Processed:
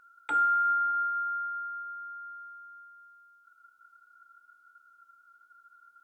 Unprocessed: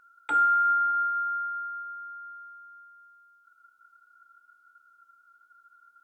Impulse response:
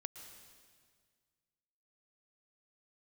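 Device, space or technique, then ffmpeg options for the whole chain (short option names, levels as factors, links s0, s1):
parallel compression: -filter_complex "[0:a]asplit=2[s0][s1];[s1]acompressor=threshold=0.00794:ratio=6,volume=0.531[s2];[s0][s2]amix=inputs=2:normalize=0,volume=0.668"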